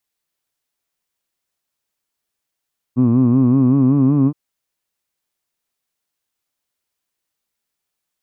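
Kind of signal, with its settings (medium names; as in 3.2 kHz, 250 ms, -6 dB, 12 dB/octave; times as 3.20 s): formant vowel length 1.37 s, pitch 120 Hz, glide +3 st, vibrato depth 1.05 st, F1 260 Hz, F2 1.1 kHz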